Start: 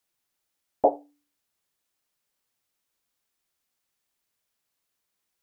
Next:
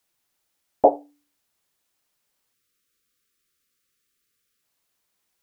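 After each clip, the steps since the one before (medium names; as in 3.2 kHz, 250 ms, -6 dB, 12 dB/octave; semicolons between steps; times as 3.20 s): spectral selection erased 2.54–4.63 s, 550–1100 Hz; trim +5 dB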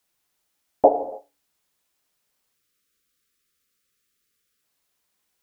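gated-style reverb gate 330 ms falling, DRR 8 dB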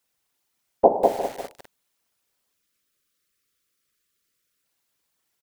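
whisper effect; delay 348 ms -15 dB; bit-crushed delay 198 ms, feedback 35%, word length 6-bit, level -3 dB; trim -1 dB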